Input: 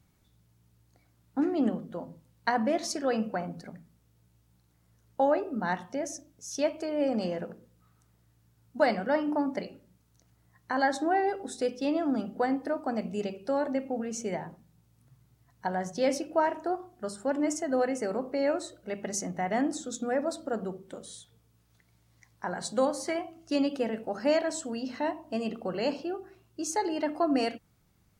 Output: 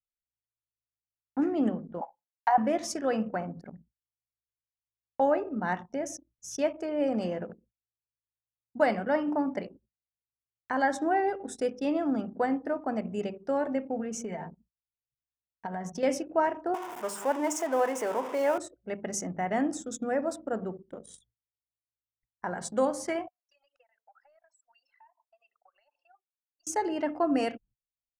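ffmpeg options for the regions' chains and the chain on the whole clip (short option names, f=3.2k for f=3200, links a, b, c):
-filter_complex "[0:a]asettb=1/sr,asplit=3[a][b][c];[a]atrim=end=2.014[d];[b]atrim=start=2.01:end=2.58,asetpts=PTS-STARTPTS,afade=t=in:d=0.004:c=qsin,afade=t=out:st=0.566:d=0.004:c=qsin,acompressor=threshold=-33dB:ratio=2:attack=3.2:release=140:knee=1:detection=peak,highpass=f=800:t=q:w=8.9[e];[c]atrim=start=2.576[f];[d][e]acrossfade=d=0.004:c1=hsin:c2=qsin[g];[g][f]acrossfade=d=0.004:c1=qsin:c2=hsin,asettb=1/sr,asplit=3[h][i][j];[h]atrim=end=14.204[k];[i]atrim=start=14.2:end=16.03,asetpts=PTS-STARTPTS,afade=t=in:d=0.004:c=qsin,afade=t=out:st=1.826:d=0.004:c=qsin,aecho=1:1:4.4:0.49,atrim=end_sample=80703,acompressor=threshold=-31dB:ratio=6:attack=3.2:release=140:knee=1:detection=peak[l];[j]atrim=start=16.026[m];[k][l]acrossfade=d=0.004:c1=hsin:c2=qsin[n];[n][m]acrossfade=d=0.004:c1=qsin:c2=hsin,asettb=1/sr,asplit=3[o][p][q];[o]atrim=end=16.744[r];[p]atrim=start=16.74:end=18.58,asetpts=PTS-STARTPTS,afade=t=in:d=0.004:c=qsin,afade=t=out:st=1.836:d=0.004:c=qsin,aeval=exprs='val(0)+0.5*0.0178*sgn(val(0))':c=same,highpass=370,equalizer=f=950:t=o:w=0.31:g=12[s];[q]atrim=start=18.576[t];[r][s]acrossfade=d=0.004:c1=hsin:c2=qsin[u];[u][t]acrossfade=d=0.004:c1=qsin:c2=hsin,asettb=1/sr,asplit=3[v][w][x];[v]atrim=end=23.284[y];[w]atrim=start=23.28:end=26.67,asetpts=PTS-STARTPTS,afade=t=in:d=0.004:c=qsin,afade=t=out:st=3.386:d=0.004:c=qsin,highpass=f=850:w=0.5412,highpass=f=850:w=1.3066,acompressor=threshold=-49dB:ratio=12:attack=3.2:release=140:knee=1:detection=peak[z];[x]atrim=start=26.666[aa];[y][z]acrossfade=d=0.004:c1=hsin:c2=qsin[ab];[ab][aa]acrossfade=d=0.004:c1=qsin:c2=hsin,agate=range=-29dB:threshold=-56dB:ratio=16:detection=peak,anlmdn=0.0631,equalizer=f=4.2k:w=4.6:g=-12.5"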